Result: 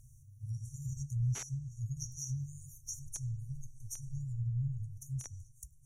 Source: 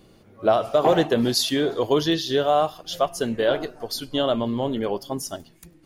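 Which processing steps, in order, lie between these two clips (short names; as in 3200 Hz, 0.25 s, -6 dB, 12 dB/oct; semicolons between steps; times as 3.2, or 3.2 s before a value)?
FFT band-reject 140–5600 Hz; in parallel at -10 dB: bit-crush 4-bit; on the sum: treble ducked by the level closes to 2900 Hz, closed at -31.5 dBFS; gain +1.5 dB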